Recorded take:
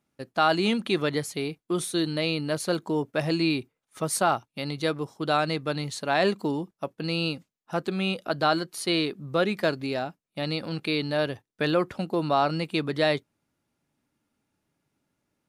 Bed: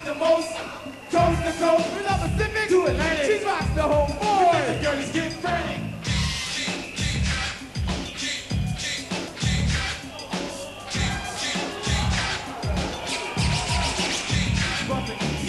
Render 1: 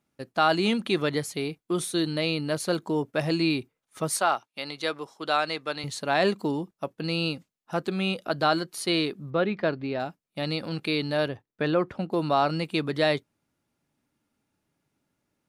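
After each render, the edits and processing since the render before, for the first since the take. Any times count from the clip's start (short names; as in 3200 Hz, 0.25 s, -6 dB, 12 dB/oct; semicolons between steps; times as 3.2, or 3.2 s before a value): 4.16–5.84 weighting filter A; 9.3–10 air absorption 270 m; 11.28–12.12 LPF 2100 Hz 6 dB/oct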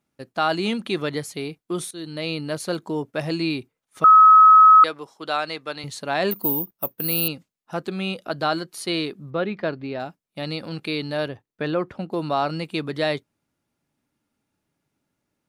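1.91–2.32 fade in, from -15 dB; 4.04–4.84 bleep 1280 Hz -7 dBFS; 6.31–7.28 careless resampling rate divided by 3×, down filtered, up zero stuff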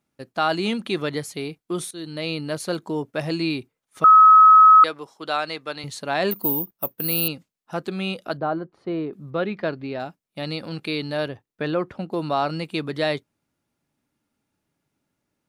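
8.37–9.13 LPF 1000 Hz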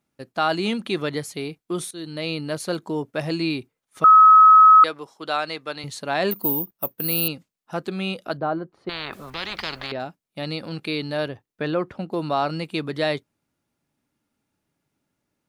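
8.89–9.92 spectral compressor 10:1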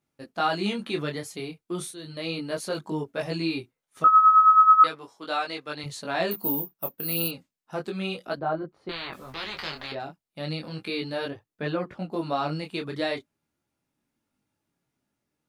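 detuned doubles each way 12 cents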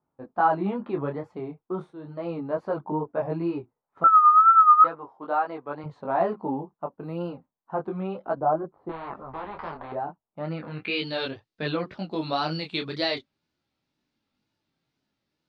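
low-pass sweep 960 Hz -> 4300 Hz, 10.34–11.19; wow and flutter 84 cents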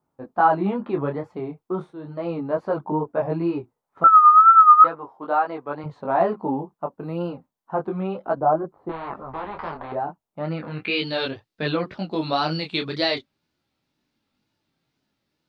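gain +4 dB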